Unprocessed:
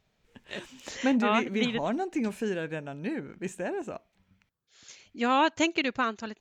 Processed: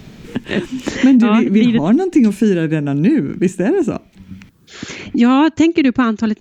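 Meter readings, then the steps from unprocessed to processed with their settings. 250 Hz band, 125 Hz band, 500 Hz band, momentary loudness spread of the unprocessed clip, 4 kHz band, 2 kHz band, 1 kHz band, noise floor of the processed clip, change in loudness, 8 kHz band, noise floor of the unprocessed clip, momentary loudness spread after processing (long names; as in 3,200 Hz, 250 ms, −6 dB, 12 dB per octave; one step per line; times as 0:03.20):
+18.5 dB, +21.0 dB, +12.5 dB, 17 LU, +7.0 dB, +8.0 dB, +6.0 dB, −49 dBFS, +14.5 dB, can't be measured, −74 dBFS, 14 LU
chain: low shelf with overshoot 420 Hz +9.5 dB, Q 1.5
boost into a limiter +9.5 dB
multiband upward and downward compressor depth 70%
level −1 dB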